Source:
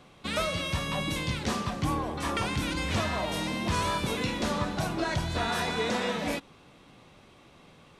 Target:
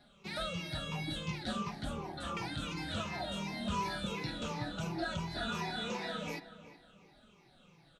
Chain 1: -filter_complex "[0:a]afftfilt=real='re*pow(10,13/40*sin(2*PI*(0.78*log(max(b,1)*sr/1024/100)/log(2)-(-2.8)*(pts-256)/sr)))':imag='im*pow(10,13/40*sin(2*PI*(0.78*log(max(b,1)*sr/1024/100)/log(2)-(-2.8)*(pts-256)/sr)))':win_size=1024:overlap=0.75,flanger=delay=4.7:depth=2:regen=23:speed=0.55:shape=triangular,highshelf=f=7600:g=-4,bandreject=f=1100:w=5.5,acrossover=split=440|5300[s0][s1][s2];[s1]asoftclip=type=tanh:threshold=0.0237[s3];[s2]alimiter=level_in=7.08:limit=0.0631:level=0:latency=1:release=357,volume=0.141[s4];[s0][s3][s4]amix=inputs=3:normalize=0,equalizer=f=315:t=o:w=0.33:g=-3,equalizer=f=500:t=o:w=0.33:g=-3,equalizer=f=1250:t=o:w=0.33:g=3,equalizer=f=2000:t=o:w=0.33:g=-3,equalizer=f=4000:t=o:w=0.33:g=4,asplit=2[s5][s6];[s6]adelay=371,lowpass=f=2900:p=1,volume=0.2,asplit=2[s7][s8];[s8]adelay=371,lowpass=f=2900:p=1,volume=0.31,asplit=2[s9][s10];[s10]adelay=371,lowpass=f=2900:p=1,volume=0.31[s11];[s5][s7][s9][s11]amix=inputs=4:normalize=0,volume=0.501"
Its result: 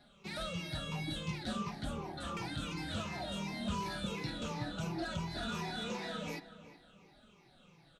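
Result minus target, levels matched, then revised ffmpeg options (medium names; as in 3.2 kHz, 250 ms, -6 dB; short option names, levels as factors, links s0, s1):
saturation: distortion +14 dB
-filter_complex "[0:a]afftfilt=real='re*pow(10,13/40*sin(2*PI*(0.78*log(max(b,1)*sr/1024/100)/log(2)-(-2.8)*(pts-256)/sr)))':imag='im*pow(10,13/40*sin(2*PI*(0.78*log(max(b,1)*sr/1024/100)/log(2)-(-2.8)*(pts-256)/sr)))':win_size=1024:overlap=0.75,flanger=delay=4.7:depth=2:regen=23:speed=0.55:shape=triangular,highshelf=f=7600:g=-4,bandreject=f=1100:w=5.5,acrossover=split=440|5300[s0][s1][s2];[s1]asoftclip=type=tanh:threshold=0.0841[s3];[s2]alimiter=level_in=7.08:limit=0.0631:level=0:latency=1:release=357,volume=0.141[s4];[s0][s3][s4]amix=inputs=3:normalize=0,equalizer=f=315:t=o:w=0.33:g=-3,equalizer=f=500:t=o:w=0.33:g=-3,equalizer=f=1250:t=o:w=0.33:g=3,equalizer=f=2000:t=o:w=0.33:g=-3,equalizer=f=4000:t=o:w=0.33:g=4,asplit=2[s5][s6];[s6]adelay=371,lowpass=f=2900:p=1,volume=0.2,asplit=2[s7][s8];[s8]adelay=371,lowpass=f=2900:p=1,volume=0.31,asplit=2[s9][s10];[s10]adelay=371,lowpass=f=2900:p=1,volume=0.31[s11];[s5][s7][s9][s11]amix=inputs=4:normalize=0,volume=0.501"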